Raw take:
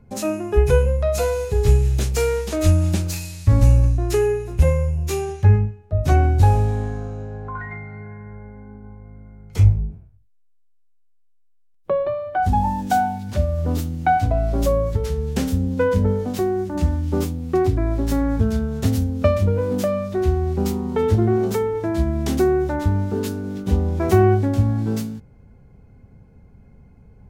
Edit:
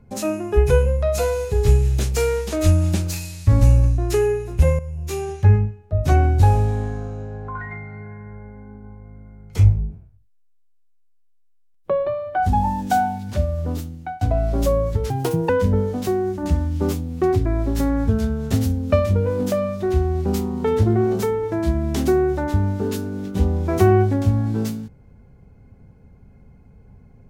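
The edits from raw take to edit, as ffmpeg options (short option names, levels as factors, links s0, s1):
-filter_complex "[0:a]asplit=5[s0][s1][s2][s3][s4];[s0]atrim=end=4.79,asetpts=PTS-STARTPTS,afade=t=out:st=4.786:d=0.004:c=hsin:silence=0.223872[s5];[s1]atrim=start=4.79:end=14.21,asetpts=PTS-STARTPTS,afade=t=in:d=0.55:silence=0.223872,afade=t=out:st=8.33:d=1.09:c=qsin:silence=0.0630957[s6];[s2]atrim=start=14.21:end=15.104,asetpts=PTS-STARTPTS,afade=t=in:d=0.004:c=hsin:silence=0.0630957[s7];[s3]atrim=start=15.1:end=15.81,asetpts=PTS-STARTPTS,asetrate=79821,aresample=44100[s8];[s4]atrim=start=15.806[s9];[s5][s6][s7]concat=n=3:v=0:a=1[s10];[s10][s8]acrossfade=d=0.004:c1=hsin:c2=hsin[s11];[s11][s9]acrossfade=d=0.004:c1=hsin:c2=hsin"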